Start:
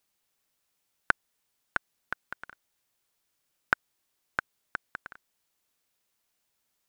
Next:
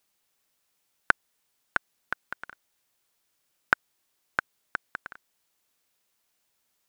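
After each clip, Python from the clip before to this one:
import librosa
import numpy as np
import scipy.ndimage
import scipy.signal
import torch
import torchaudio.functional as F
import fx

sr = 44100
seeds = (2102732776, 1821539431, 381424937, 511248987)

y = fx.low_shelf(x, sr, hz=160.0, db=-3.5)
y = y * 10.0 ** (3.0 / 20.0)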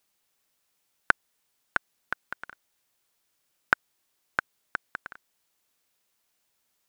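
y = x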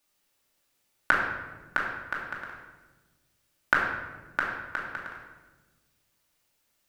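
y = fx.room_shoebox(x, sr, seeds[0], volume_m3=720.0, walls='mixed', distance_m=2.5)
y = y * 10.0 ** (-3.0 / 20.0)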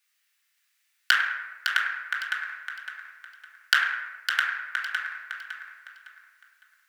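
y = fx.tracing_dist(x, sr, depth_ms=0.31)
y = fx.highpass_res(y, sr, hz=1800.0, q=2.3)
y = fx.echo_feedback(y, sr, ms=558, feedback_pct=30, wet_db=-7)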